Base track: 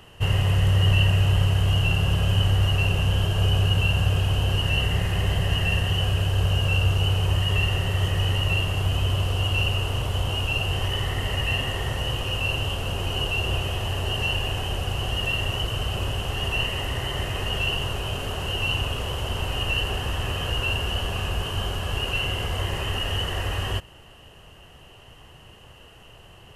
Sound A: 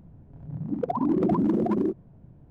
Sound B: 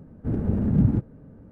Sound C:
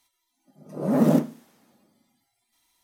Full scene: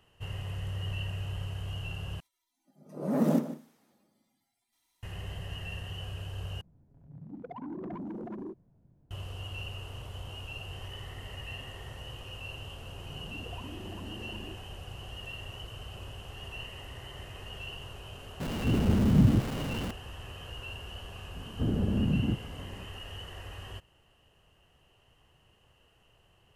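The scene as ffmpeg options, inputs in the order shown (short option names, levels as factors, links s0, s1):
-filter_complex "[1:a]asplit=2[s0][s1];[2:a]asplit=2[s2][s3];[0:a]volume=0.15[s4];[3:a]asplit=2[s5][s6];[s6]adelay=151.6,volume=0.224,highshelf=f=4000:g=-3.41[s7];[s5][s7]amix=inputs=2:normalize=0[s8];[s0]asoftclip=type=tanh:threshold=0.0841[s9];[s1]acompressor=threshold=0.0141:ratio=6:attack=3.2:release=140:knee=1:detection=peak[s10];[s2]aeval=exprs='val(0)+0.5*0.0473*sgn(val(0))':c=same[s11];[s3]acompressor=threshold=0.0708:ratio=6:attack=3.2:release=140:knee=1:detection=peak[s12];[s4]asplit=3[s13][s14][s15];[s13]atrim=end=2.204[s16];[s8]atrim=end=2.83,asetpts=PTS-STARTPTS,volume=0.447[s17];[s14]atrim=start=5.026:end=6.614[s18];[s9]atrim=end=2.5,asetpts=PTS-STARTPTS,volume=0.224[s19];[s15]atrim=start=9.106[s20];[s10]atrim=end=2.5,asetpts=PTS-STARTPTS,volume=0.447,afade=t=in:d=0.004:c=hsin,afade=t=out:st=2.496:d=0.004:c=hsin,adelay=12630[s21];[s11]atrim=end=1.51,asetpts=PTS-STARTPTS,volume=0.708,afade=t=in:d=0.004:c=hsin,afade=t=out:st=1.506:d=0.004:c=hsin,adelay=18400[s22];[s12]atrim=end=1.51,asetpts=PTS-STARTPTS,volume=0.944,afade=t=in:d=0.004:c=hsin,afade=t=out:st=1.506:d=0.004:c=hsin,adelay=21350[s23];[s16][s17]acrossfade=d=0.004:c1=hsin:c2=hsin[s24];[s24][s18]acrossfade=d=0.004:c1=hsin:c2=hsin[s25];[s25][s19]acrossfade=d=0.004:c1=hsin:c2=hsin[s26];[s26][s20]acrossfade=d=0.004:c1=hsin:c2=hsin[s27];[s27][s21][s22][s23]amix=inputs=4:normalize=0"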